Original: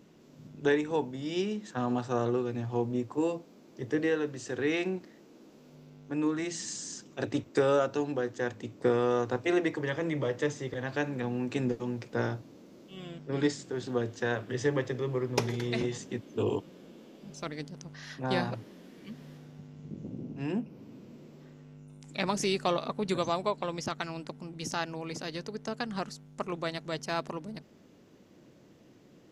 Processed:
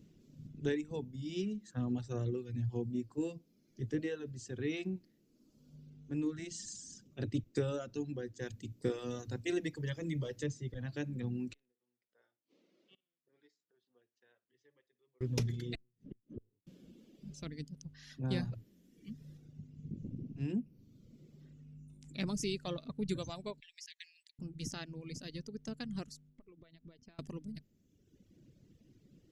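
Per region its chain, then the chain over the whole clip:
8.42–10.43 s: treble shelf 3.4 kHz +7.5 dB + hum notches 60/120/180/240 Hz
11.53–15.21 s: inverted gate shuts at -36 dBFS, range -25 dB + band-pass 610–3400 Hz + flutter echo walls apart 9.7 m, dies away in 0.27 s
15.75–16.67 s: upward compressor, threshold -34 dBFS + inverted gate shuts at -27 dBFS, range -35 dB + tape spacing loss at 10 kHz 35 dB
23.60–24.39 s: brick-wall FIR high-pass 1.6 kHz + treble shelf 5.4 kHz -5 dB
26.29–27.19 s: hum notches 50/100/150/200 Hz + compression 16:1, threshold -45 dBFS + distance through air 190 m
whole clip: reverb removal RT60 1.5 s; amplifier tone stack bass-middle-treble 10-0-1; trim +15 dB

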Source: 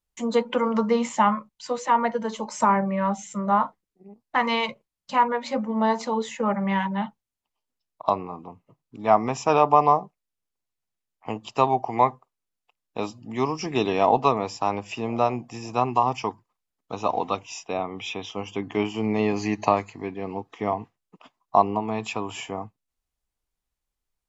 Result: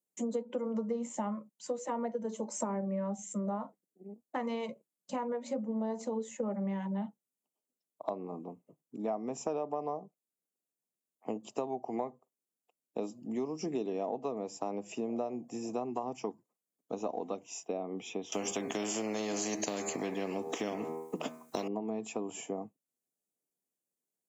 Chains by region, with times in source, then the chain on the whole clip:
18.32–21.68 s: de-hum 79.92 Hz, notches 32 + spectrum-flattening compressor 4:1
whole clip: high-pass 180 Hz 24 dB/octave; high-order bell 2.1 kHz -14 dB 2.9 oct; compression 6:1, threshold -32 dBFS

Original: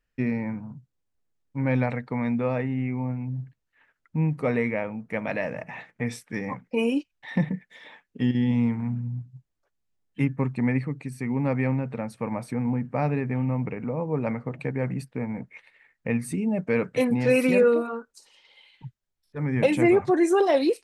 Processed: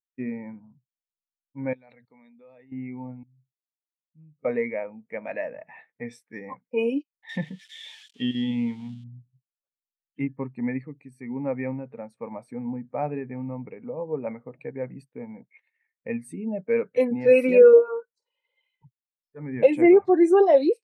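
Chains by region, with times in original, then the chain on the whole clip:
1.73–2.72 s: hum notches 60/120/180 Hz + level held to a coarse grid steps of 21 dB + peaking EQ 4 kHz +14.5 dB 0.91 oct
3.23–4.45 s: amplifier tone stack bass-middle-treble 10-0-1 + hard clipper -33 dBFS
7.29–9.04 s: zero-crossing glitches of -29 dBFS + low-pass 7.8 kHz + peaking EQ 3.2 kHz +12.5 dB
17.73–18.86 s: low-pass 1.3 kHz 6 dB/octave + comb 2 ms, depth 98%
whole clip: tone controls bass -10 dB, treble +1 dB; spectral contrast expander 1.5:1; trim +4 dB

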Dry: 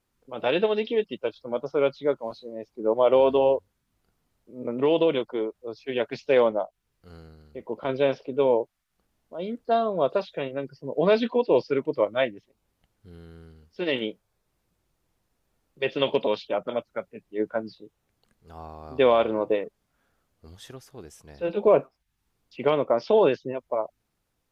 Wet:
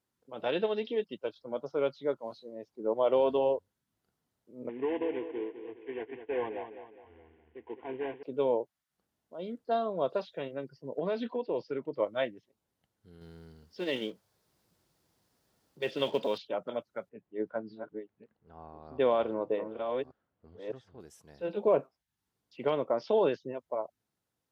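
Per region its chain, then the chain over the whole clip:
4.69–8.23 s: CVSD coder 16 kbps + static phaser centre 870 Hz, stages 8 + feedback delay 206 ms, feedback 42%, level -10 dB
10.99–12.00 s: treble shelf 4.4 kHz -8.5 dB + compression 2:1, threshold -24 dBFS
13.21–16.38 s: companding laws mixed up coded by mu + peaking EQ 4.8 kHz +4.5 dB 0.51 oct
17.09–21.00 s: chunks repeated in reverse 605 ms, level -7 dB + level-controlled noise filter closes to 2.4 kHz, open at -18.5 dBFS + treble shelf 3.1 kHz -7 dB
whole clip: high-pass 97 Hz; peaking EQ 2.4 kHz -4 dB 0.34 oct; band-stop 1.2 kHz, Q 23; trim -7 dB

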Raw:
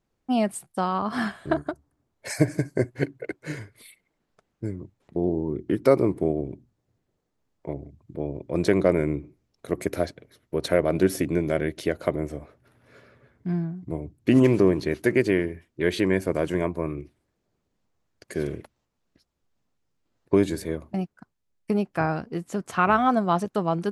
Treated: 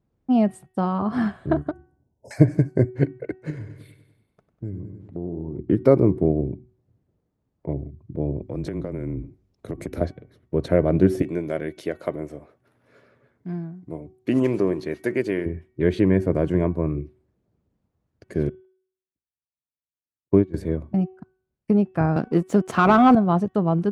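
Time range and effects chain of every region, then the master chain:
1.71–2.31 s: hum notches 50/100/150/200/250/300/350 Hz + compression, threshold -39 dBFS + brick-wall FIR band-stop 1–4.9 kHz
3.50–5.59 s: feedback delay 98 ms, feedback 57%, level -12 dB + compression 2:1, threshold -39 dBFS
8.41–10.01 s: frequency shift -20 Hz + compression 10:1, threshold -29 dBFS + treble shelf 3.9 kHz +6.5 dB
11.22–15.46 s: high-pass 610 Hz 6 dB/octave + treble shelf 5.4 kHz +8 dB
18.49–20.54 s: distance through air 150 m + upward expansion 2.5:1, over -39 dBFS
22.16–23.15 s: high-pass 200 Hz + treble shelf 4.1 kHz +6.5 dB + waveshaping leveller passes 2
whole clip: high-pass 69 Hz; tilt EQ -3.5 dB/octave; de-hum 375 Hz, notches 9; trim -1.5 dB

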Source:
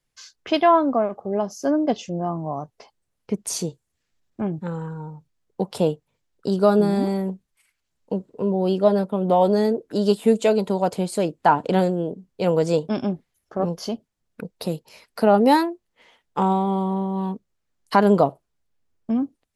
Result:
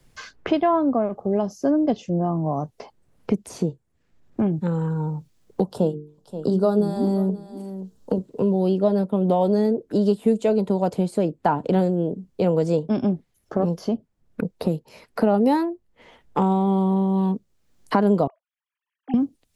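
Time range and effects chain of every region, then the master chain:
5.65–8.18 s: peaking EQ 2.2 kHz -15 dB 0.54 oct + hum notches 50/100/150/200/250/300/350/400/450 Hz + delay 527 ms -22 dB
18.27–19.14 s: formants replaced by sine waves + high-pass 1.1 kHz
whole clip: tilt shelf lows +5 dB, about 640 Hz; three bands compressed up and down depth 70%; trim -2 dB

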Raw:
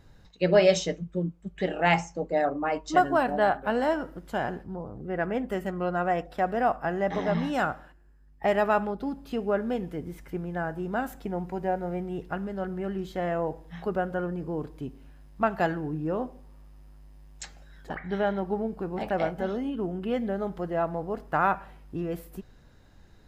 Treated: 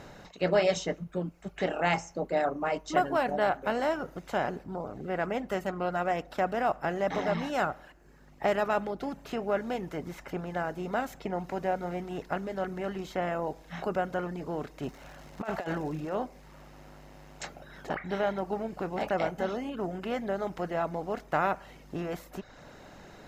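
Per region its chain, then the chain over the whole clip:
14.82–16.14 s: compressor with a negative ratio -30 dBFS, ratio -0.5 + crackle 350 per s -51 dBFS
whole clip: spectral levelling over time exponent 0.6; reverb removal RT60 0.69 s; trim -6 dB

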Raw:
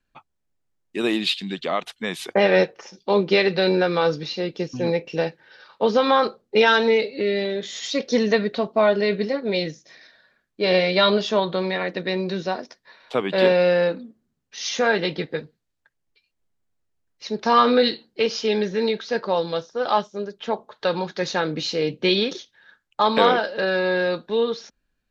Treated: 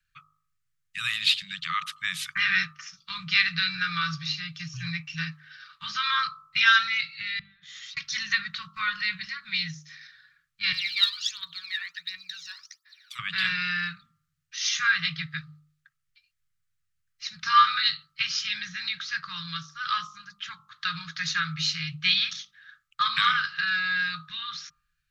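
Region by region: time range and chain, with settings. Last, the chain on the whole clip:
7.39–7.97 s: low-pass 1.1 kHz 6 dB/octave + compression 16:1, threshold -38 dBFS
10.72–13.19 s: differentiator + phaser 1.4 Hz, delay 1.2 ms, feedback 73%
whole clip: Chebyshev band-stop 160–1200 Hz, order 5; bass shelf 76 Hz -6 dB; de-hum 50.39 Hz, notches 27; trim +2 dB

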